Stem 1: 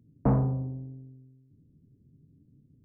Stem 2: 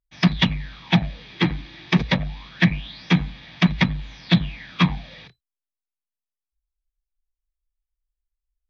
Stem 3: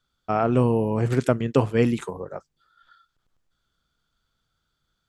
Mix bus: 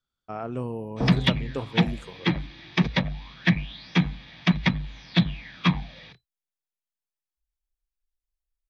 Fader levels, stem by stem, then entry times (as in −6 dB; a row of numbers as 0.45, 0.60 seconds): −3.0, −3.5, −11.5 decibels; 0.75, 0.85, 0.00 seconds